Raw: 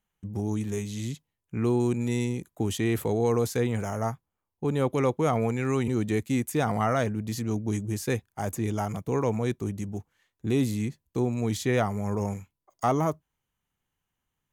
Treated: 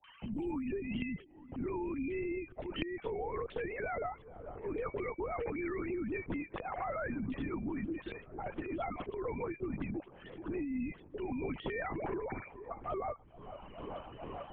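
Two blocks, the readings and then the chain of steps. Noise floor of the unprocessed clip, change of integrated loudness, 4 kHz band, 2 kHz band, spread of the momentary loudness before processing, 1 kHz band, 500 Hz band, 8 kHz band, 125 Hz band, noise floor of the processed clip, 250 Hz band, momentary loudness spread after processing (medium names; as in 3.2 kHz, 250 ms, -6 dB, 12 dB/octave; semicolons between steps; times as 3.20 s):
-85 dBFS, -11.0 dB, -11.5 dB, -6.0 dB, 9 LU, -9.0 dB, -10.0 dB, under -40 dB, -18.0 dB, -57 dBFS, -10.0 dB, 9 LU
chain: formants replaced by sine waves; treble shelf 2.8 kHz +10.5 dB; peak limiter -21.5 dBFS, peak gain reduction 8.5 dB; slow attack 771 ms; compression 6:1, threshold -37 dBFS, peak gain reduction 11.5 dB; phase dispersion highs, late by 55 ms, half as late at 1 kHz; on a send: feedback echo behind a band-pass 436 ms, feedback 67%, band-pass 600 Hz, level -22.5 dB; on the sum: LPC vocoder at 8 kHz whisper; three bands compressed up and down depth 100%; trim +1.5 dB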